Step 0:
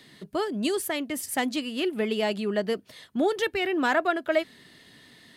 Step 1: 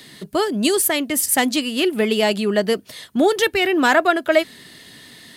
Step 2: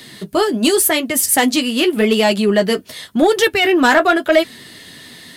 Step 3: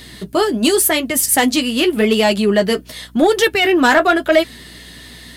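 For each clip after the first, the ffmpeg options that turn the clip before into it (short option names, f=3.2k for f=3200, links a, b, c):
-af "highshelf=f=5.2k:g=8.5,volume=8dB"
-af "flanger=delay=8.3:depth=4.3:regen=-34:speed=0.88:shape=sinusoidal,asoftclip=type=tanh:threshold=-11.5dB,volume=8.5dB"
-af "aeval=exprs='val(0)+0.00708*(sin(2*PI*60*n/s)+sin(2*PI*2*60*n/s)/2+sin(2*PI*3*60*n/s)/3+sin(2*PI*4*60*n/s)/4+sin(2*PI*5*60*n/s)/5)':c=same"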